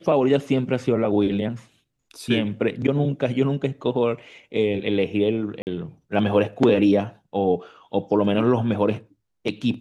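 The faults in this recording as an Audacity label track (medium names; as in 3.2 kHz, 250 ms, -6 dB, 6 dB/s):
5.620000	5.670000	dropout 49 ms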